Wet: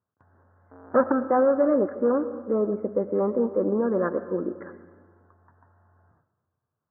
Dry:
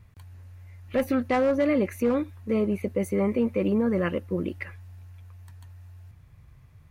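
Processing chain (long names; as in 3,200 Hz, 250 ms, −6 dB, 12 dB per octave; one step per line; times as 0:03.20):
0:00.71–0:01.12: each half-wave held at its own peak
Butterworth low-pass 1,600 Hz 72 dB per octave
noise gate with hold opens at −41 dBFS
high-pass filter 300 Hz 12 dB per octave
comb and all-pass reverb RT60 1.5 s, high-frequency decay 0.45×, pre-delay 65 ms, DRR 12.5 dB
level +3.5 dB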